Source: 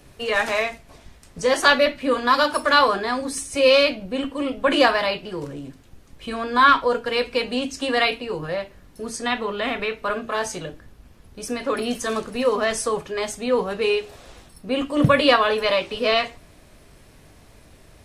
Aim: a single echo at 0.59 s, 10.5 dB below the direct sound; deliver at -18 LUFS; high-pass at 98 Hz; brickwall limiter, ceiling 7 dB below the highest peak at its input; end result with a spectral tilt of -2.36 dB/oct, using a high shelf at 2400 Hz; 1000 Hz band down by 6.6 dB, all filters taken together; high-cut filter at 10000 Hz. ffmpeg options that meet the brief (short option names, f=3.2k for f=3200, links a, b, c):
-af "highpass=98,lowpass=10k,equalizer=f=1k:t=o:g=-7.5,highshelf=f=2.4k:g=-4,alimiter=limit=-13dB:level=0:latency=1,aecho=1:1:590:0.299,volume=7.5dB"